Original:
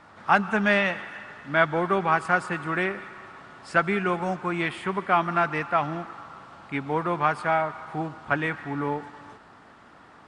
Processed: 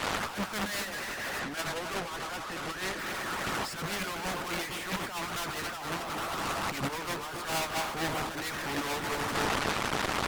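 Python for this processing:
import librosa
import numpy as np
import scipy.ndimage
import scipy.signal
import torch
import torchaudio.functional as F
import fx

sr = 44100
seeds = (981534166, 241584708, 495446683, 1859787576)

y = fx.reverse_delay_fb(x, sr, ms=137, feedback_pct=57, wet_db=-13.0)
y = fx.fuzz(y, sr, gain_db=46.0, gate_db=-50.0)
y = fx.air_absorb(y, sr, metres=130.0, at=(1.39, 2.99))
y = fx.tube_stage(y, sr, drive_db=26.0, bias=0.8)
y = fx.hpss(y, sr, part='harmonic', gain_db=-13)
y = fx.over_compress(y, sr, threshold_db=-36.0, ratio=-0.5)
y = y + 10.0 ** (-13.5 / 20.0) * np.pad(y, (int(265 * sr / 1000.0), 0))[:len(y)]
y = y * 10.0 ** (3.0 / 20.0)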